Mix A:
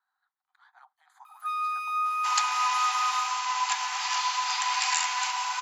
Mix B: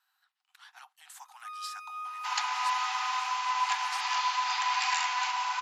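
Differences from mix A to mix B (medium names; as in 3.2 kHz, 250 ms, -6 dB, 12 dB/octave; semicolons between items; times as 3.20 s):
speech: remove boxcar filter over 16 samples; first sound -11.5 dB; second sound: add distance through air 110 m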